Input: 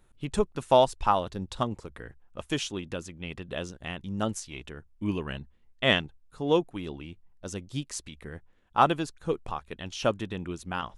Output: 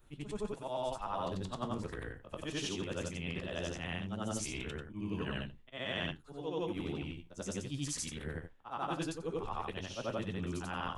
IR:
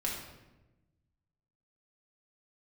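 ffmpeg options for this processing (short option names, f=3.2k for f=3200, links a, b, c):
-af "afftfilt=real='re':imag='-im':win_size=8192:overlap=0.75,flanger=delay=8.3:depth=6.8:regen=-64:speed=0.2:shape=triangular,areverse,acompressor=threshold=-44dB:ratio=12,areverse,volume=10dB"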